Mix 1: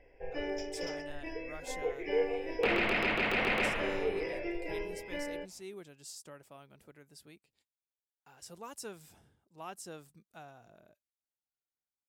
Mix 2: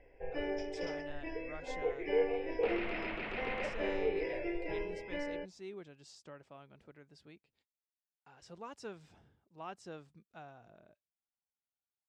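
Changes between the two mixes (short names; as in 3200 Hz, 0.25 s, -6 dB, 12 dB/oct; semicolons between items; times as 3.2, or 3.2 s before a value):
second sound -9.5 dB; master: add air absorption 150 m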